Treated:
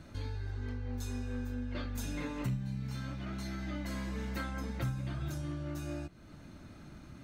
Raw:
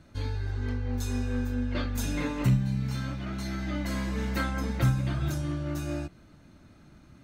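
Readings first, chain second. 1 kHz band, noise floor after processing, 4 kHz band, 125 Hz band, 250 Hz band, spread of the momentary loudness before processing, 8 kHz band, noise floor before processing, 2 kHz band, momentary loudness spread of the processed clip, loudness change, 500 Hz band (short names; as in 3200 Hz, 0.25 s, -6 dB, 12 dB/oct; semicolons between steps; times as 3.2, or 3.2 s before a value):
-8.0 dB, -53 dBFS, -7.5 dB, -9.0 dB, -8.0 dB, 8 LU, -7.5 dB, -55 dBFS, -8.0 dB, 15 LU, -8.5 dB, -7.5 dB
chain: compressor 2:1, threshold -48 dBFS, peak gain reduction 15.5 dB; gain +3.5 dB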